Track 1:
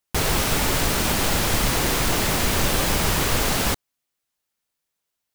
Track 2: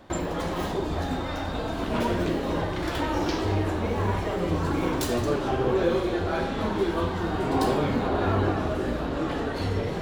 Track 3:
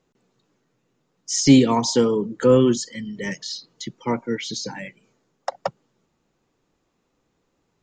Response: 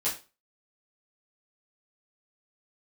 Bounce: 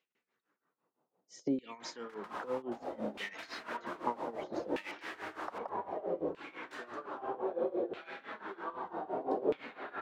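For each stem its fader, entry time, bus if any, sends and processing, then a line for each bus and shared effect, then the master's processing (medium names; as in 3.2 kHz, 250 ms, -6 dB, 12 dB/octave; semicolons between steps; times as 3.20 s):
-13.0 dB, 1.95 s, no bus, no send, trance gate "xx.xxxx.xxxx" 157 bpm; gain riding
-3.5 dB, 1.70 s, bus A, no send, bass shelf 130 Hz -11 dB
-1.0 dB, 0.00 s, bus A, no send, none
bus A: 0.0 dB, peaking EQ 270 Hz +7.5 dB 2.6 oct; compression 12:1, threshold -18 dBFS, peak gain reduction 17 dB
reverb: none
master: LFO band-pass saw down 0.63 Hz 450–2700 Hz; tremolo 5.9 Hz, depth 86%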